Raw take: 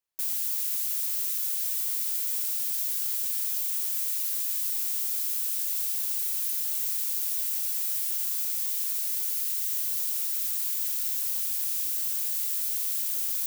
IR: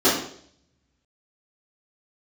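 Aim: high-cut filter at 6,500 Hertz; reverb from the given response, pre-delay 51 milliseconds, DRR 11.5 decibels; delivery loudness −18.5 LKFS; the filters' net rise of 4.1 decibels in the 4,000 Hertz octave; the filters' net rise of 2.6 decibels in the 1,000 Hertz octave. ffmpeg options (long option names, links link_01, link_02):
-filter_complex "[0:a]lowpass=6500,equalizer=frequency=1000:width_type=o:gain=3,equalizer=frequency=4000:width_type=o:gain=6,asplit=2[link_01][link_02];[1:a]atrim=start_sample=2205,adelay=51[link_03];[link_02][link_03]afir=irnorm=-1:irlink=0,volume=-32dB[link_04];[link_01][link_04]amix=inputs=2:normalize=0,volume=18.5dB"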